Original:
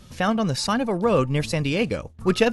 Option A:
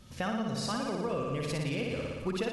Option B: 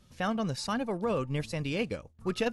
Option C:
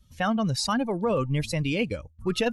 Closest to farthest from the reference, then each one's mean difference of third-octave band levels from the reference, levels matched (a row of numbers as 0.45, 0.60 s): B, C, A; 1.5, 5.0, 7.0 dB